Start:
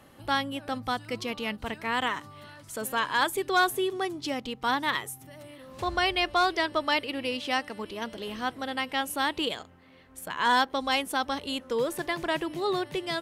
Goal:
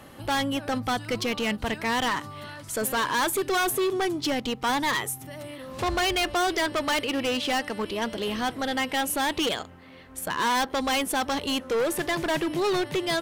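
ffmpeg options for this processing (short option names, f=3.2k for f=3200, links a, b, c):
-af "volume=29.5dB,asoftclip=hard,volume=-29.5dB,volume=7.5dB"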